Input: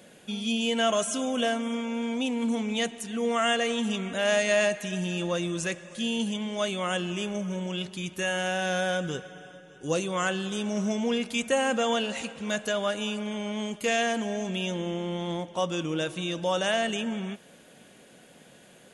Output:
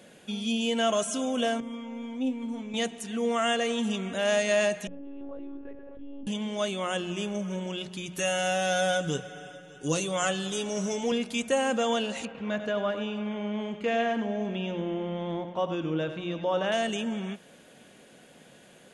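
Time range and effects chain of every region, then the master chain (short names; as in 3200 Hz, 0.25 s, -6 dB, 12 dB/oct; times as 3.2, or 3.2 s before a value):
1.6–2.74 tilt -2 dB/oct + resonator 130 Hz, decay 0.19 s, mix 90%
4.87–6.27 ladder band-pass 370 Hz, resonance 45% + monotone LPC vocoder at 8 kHz 280 Hz + fast leveller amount 70%
8.15–11.12 high shelf 4100 Hz +6.5 dB + comb 6.9 ms, depth 60%
12.25–16.72 LPF 2500 Hz + echo 96 ms -10 dB
whole clip: high shelf 9700 Hz -4.5 dB; notches 60/120/180 Hz; dynamic EQ 1900 Hz, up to -3 dB, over -41 dBFS, Q 0.85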